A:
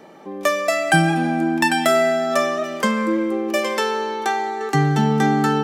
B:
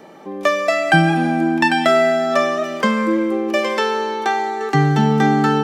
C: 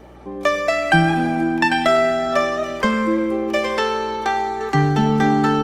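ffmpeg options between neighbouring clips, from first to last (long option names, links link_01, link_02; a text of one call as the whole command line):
ffmpeg -i in.wav -filter_complex "[0:a]acrossover=split=5600[link_01][link_02];[link_02]acompressor=threshold=-48dB:ratio=4:attack=1:release=60[link_03];[link_01][link_03]amix=inputs=2:normalize=0,volume=2.5dB" out.wav
ffmpeg -i in.wav -filter_complex "[0:a]aeval=exprs='val(0)+0.00631*(sin(2*PI*60*n/s)+sin(2*PI*2*60*n/s)/2+sin(2*PI*3*60*n/s)/3+sin(2*PI*4*60*n/s)/4+sin(2*PI*5*60*n/s)/5)':channel_layout=same,asplit=2[link_01][link_02];[link_02]adelay=99.13,volume=-16dB,highshelf=frequency=4000:gain=-2.23[link_03];[link_01][link_03]amix=inputs=2:normalize=0,volume=-1.5dB" -ar 48000 -c:a libopus -b:a 24k out.opus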